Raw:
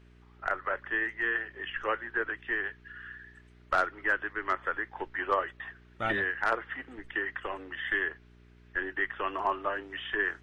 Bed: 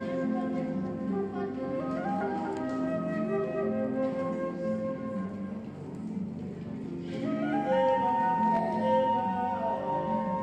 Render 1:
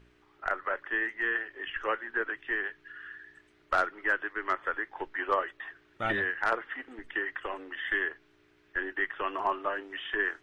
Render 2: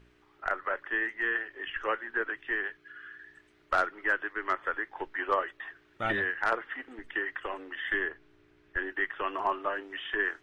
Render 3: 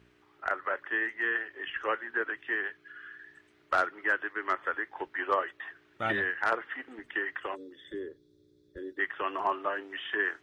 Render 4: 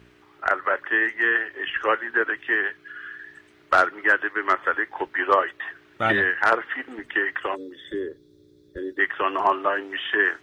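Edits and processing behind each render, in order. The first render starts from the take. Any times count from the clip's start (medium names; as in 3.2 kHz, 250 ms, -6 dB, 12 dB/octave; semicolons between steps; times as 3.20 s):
de-hum 60 Hz, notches 4
2.77–3.19 s: comb of notches 920 Hz; 7.94–8.77 s: tilt EQ -1.5 dB/octave
7.55–8.99 s: time-frequency box 590–3300 Hz -23 dB; high-pass 80 Hz 12 dB/octave
trim +9 dB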